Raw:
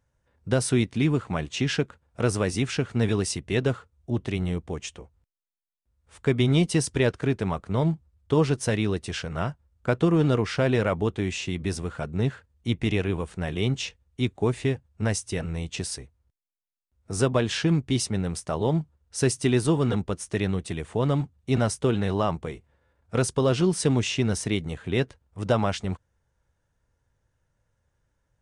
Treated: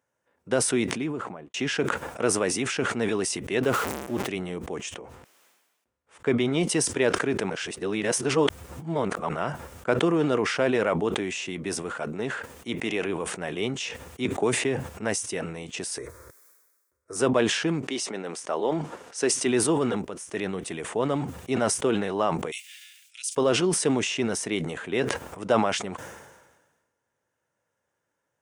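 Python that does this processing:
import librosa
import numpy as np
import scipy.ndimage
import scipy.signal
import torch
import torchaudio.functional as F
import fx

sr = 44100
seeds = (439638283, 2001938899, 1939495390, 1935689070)

y = fx.studio_fade_out(x, sr, start_s=0.71, length_s=0.83)
y = fx.zero_step(y, sr, step_db=-36.0, at=(3.63, 4.28))
y = fx.high_shelf(y, sr, hz=7700.0, db=-10.5, at=(4.96, 6.61))
y = fx.low_shelf(y, sr, hz=120.0, db=-10.0, at=(11.98, 13.06))
y = fx.band_squash(y, sr, depth_pct=70, at=(14.25, 14.89))
y = fx.fixed_phaser(y, sr, hz=780.0, stages=6, at=(15.98, 17.16))
y = fx.bandpass_edges(y, sr, low_hz=fx.line((17.81, 330.0), (19.45, 210.0)), high_hz=7800.0, at=(17.81, 19.45), fade=0.02)
y = fx.steep_highpass(y, sr, hz=2600.0, slope=36, at=(22.5, 23.35), fade=0.02)
y = fx.edit(y, sr, fx.reverse_span(start_s=7.5, length_s=1.79),
    fx.fade_in_from(start_s=20.05, length_s=0.48, floor_db=-16.5), tone=tone)
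y = scipy.signal.sosfilt(scipy.signal.butter(2, 290.0, 'highpass', fs=sr, output='sos'), y)
y = fx.peak_eq(y, sr, hz=4200.0, db=-6.0, octaves=0.63)
y = fx.sustainer(y, sr, db_per_s=45.0)
y = F.gain(torch.from_numpy(y), 1.0).numpy()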